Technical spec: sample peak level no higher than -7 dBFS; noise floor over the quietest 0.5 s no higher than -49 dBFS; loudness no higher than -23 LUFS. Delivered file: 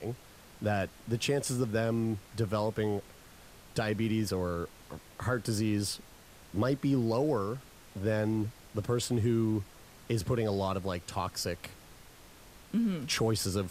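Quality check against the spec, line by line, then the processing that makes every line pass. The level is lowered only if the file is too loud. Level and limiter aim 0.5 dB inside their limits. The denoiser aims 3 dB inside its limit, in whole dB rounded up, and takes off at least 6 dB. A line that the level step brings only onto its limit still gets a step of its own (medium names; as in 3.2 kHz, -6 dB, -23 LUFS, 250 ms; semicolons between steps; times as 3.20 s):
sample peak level -18.0 dBFS: pass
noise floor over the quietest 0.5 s -54 dBFS: pass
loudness -32.5 LUFS: pass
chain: none needed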